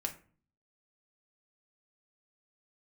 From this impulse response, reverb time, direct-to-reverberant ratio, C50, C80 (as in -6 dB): 0.40 s, 2.0 dB, 12.5 dB, 17.5 dB